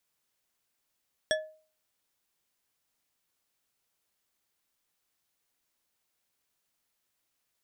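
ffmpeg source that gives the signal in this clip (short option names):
-f lavfi -i "aevalsrc='0.0708*pow(10,-3*t/0.42)*sin(2*PI*625*t)+0.0562*pow(10,-3*t/0.207)*sin(2*PI*1723.1*t)+0.0447*pow(10,-3*t/0.129)*sin(2*PI*3377.5*t)+0.0355*pow(10,-3*t/0.091)*sin(2*PI*5583.1*t)+0.0282*pow(10,-3*t/0.068)*sin(2*PI*8337.5*t)':d=0.89:s=44100"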